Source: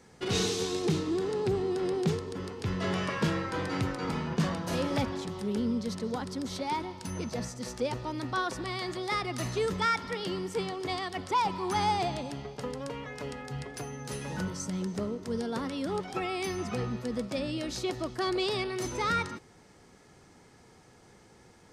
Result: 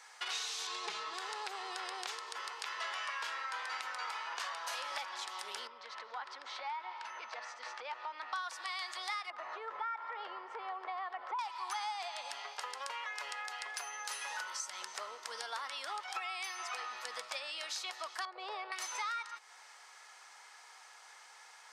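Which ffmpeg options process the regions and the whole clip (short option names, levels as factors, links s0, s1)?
-filter_complex "[0:a]asettb=1/sr,asplit=3[s0][s1][s2];[s0]atrim=end=0.674[s3];[s1]atrim=start=0.67:end=1.14,asetpts=PTS-STARTPTS,afade=t=in:d=0.004:c=qsin,afade=t=out:st=0.466:d=0.004:c=qsin,equalizer=f=170:w=0.93:g=13.5,aecho=1:1:4.7:0.78,atrim=end_sample=20727,adynamicsmooth=sensitivity=1.5:basefreq=5700[s4];[s2]atrim=start=1.136[s5];[s3][s4]acrossfade=d=0.004:c1=hsin:c2=qsin[s6];[s6][s5]acrossfade=d=0.004:c1=qsin:c2=hsin,asettb=1/sr,asplit=3[s7][s8][s9];[s7]atrim=end=5.674[s10];[s8]atrim=start=5.67:end=8.33,asetpts=PTS-STARTPTS,afade=t=in:d=0.004:c=qsin,afade=t=out:st=2.656:d=0.004:c=qsin,acompressor=threshold=0.0178:ratio=3:attack=3.2:release=140:knee=1:detection=peak,lowpass=2500[s11];[s9]atrim=start=8.326[s12];[s10][s11]acrossfade=d=0.004:c1=hsin:c2=qsin[s13];[s13][s12]acrossfade=d=0.004:c1=qsin:c2=hsin,asettb=1/sr,asplit=3[s14][s15][s16];[s14]atrim=end=9.304[s17];[s15]atrim=start=9.3:end=11.39,asetpts=PTS-STARTPTS,afade=t=in:d=0.004:c=qsin,afade=t=out:st=2.086:d=0.004:c=qsin,lowpass=1400,equalizer=f=390:w=0.43:g=7.5,acompressor=threshold=0.0316:ratio=4:attack=3.2:release=140:knee=1:detection=peak[s18];[s16]atrim=start=11.386[s19];[s17][s18]acrossfade=d=0.004:c1=hsin:c2=qsin[s20];[s20][s19]acrossfade=d=0.004:c1=qsin:c2=hsin,asettb=1/sr,asplit=3[s21][s22][s23];[s21]atrim=end=18.254[s24];[s22]atrim=start=18.25:end=18.72,asetpts=PTS-STARTPTS,afade=t=in:d=0.004:c=qsin,afade=t=out:st=0.466:d=0.004:c=qsin,bandpass=f=500:t=q:w=2,acontrast=28[s25];[s23]atrim=start=18.716[s26];[s24][s25]acrossfade=d=0.004:c1=hsin:c2=qsin[s27];[s27][s26]acrossfade=d=0.004:c1=qsin:c2=hsin,highpass=f=890:w=0.5412,highpass=f=890:w=1.3066,highshelf=f=10000:g=-6,acompressor=threshold=0.00562:ratio=5,volume=2.24"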